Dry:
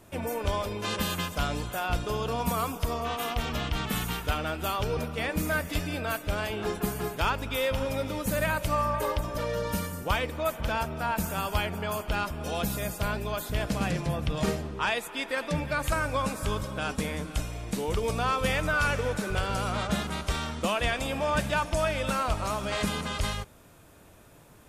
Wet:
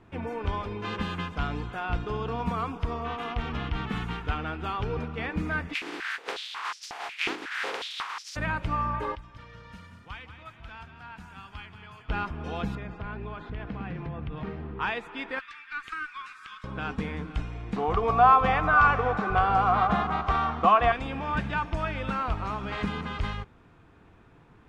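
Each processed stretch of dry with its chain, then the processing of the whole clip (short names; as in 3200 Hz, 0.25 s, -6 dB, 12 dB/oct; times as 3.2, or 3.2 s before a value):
5.73–8.35 spectral contrast lowered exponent 0.11 + stepped high-pass 5.5 Hz 320–5400 Hz
9.15–12.09 passive tone stack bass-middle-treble 5-5-5 + frequency-shifting echo 0.181 s, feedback 48%, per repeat +33 Hz, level -9 dB
12.75–14.8 LPF 3100 Hz + compressor 3:1, threshold -32 dBFS
15.39–16.64 steep high-pass 1200 Hz 48 dB/oct + tube stage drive 24 dB, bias 0.4
17.76–20.92 LPF 7900 Hz + small resonant body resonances 750/1100 Hz, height 18 dB, ringing for 25 ms
whole clip: LPF 2400 Hz 12 dB/oct; bell 590 Hz -13 dB 0.27 oct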